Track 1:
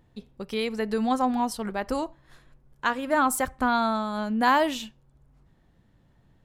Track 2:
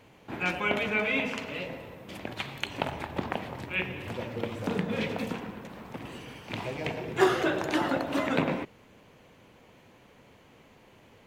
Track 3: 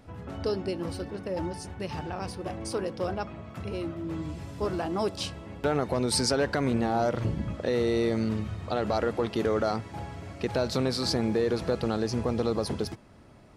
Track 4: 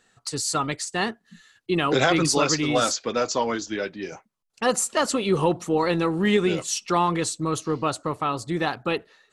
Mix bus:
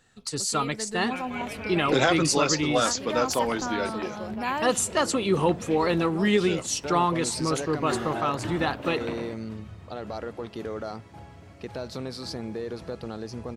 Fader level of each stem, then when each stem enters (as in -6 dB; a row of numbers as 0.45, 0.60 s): -8.5, -8.5, -7.5, -1.5 dB; 0.00, 0.70, 1.20, 0.00 s